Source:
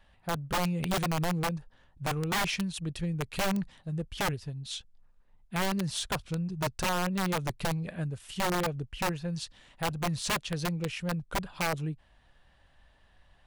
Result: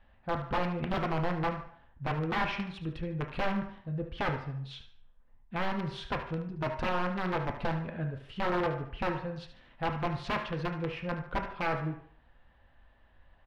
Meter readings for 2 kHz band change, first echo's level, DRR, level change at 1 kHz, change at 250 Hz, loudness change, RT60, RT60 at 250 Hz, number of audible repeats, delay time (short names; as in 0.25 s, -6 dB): -1.5 dB, -12.0 dB, 3.0 dB, +0.5 dB, -2.5 dB, -2.0 dB, 0.60 s, 0.45 s, 1, 74 ms